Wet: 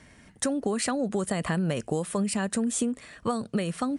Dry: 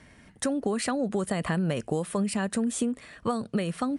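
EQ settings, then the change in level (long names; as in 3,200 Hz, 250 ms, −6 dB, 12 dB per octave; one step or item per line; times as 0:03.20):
parametric band 7,200 Hz +4.5 dB 0.99 octaves
0.0 dB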